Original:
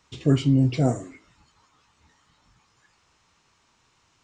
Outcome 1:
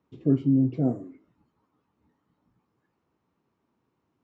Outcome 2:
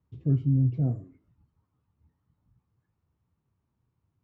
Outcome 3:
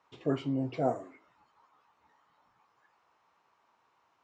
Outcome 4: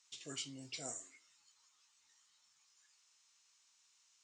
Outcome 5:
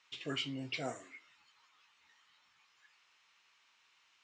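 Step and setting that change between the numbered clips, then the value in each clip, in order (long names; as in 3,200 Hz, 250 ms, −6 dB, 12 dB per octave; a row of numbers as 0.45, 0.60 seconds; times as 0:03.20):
resonant band-pass, frequency: 270, 100, 820, 7,300, 2,600 Hertz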